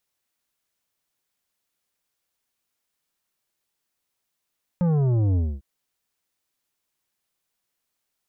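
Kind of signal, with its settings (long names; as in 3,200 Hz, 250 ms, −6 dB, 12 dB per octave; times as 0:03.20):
bass drop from 180 Hz, over 0.80 s, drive 10 dB, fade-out 0.25 s, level −19 dB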